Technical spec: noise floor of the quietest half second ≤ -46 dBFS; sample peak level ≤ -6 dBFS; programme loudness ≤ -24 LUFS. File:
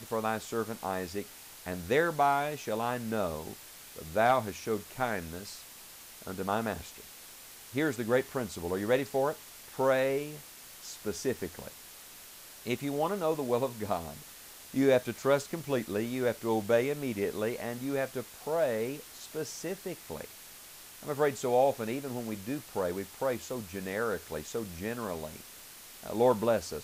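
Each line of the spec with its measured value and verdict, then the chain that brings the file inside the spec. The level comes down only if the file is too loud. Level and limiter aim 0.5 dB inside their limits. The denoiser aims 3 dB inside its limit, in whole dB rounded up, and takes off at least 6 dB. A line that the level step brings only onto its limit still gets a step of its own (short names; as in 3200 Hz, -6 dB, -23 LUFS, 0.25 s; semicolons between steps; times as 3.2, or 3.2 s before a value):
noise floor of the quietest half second -50 dBFS: OK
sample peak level -14.5 dBFS: OK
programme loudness -32.0 LUFS: OK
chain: none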